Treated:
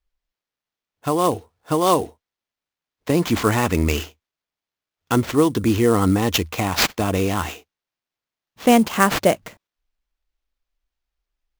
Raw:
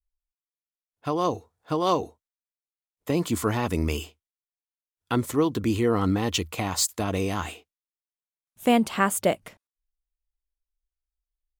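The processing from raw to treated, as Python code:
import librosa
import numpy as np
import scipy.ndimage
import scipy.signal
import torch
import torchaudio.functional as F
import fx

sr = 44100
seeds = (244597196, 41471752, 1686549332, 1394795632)

y = fx.peak_eq(x, sr, hz=2000.0, db=4.0, octaves=1.4, at=(3.22, 3.99))
y = fx.sample_hold(y, sr, seeds[0], rate_hz=9500.0, jitter_pct=20)
y = y * librosa.db_to_amplitude(6.0)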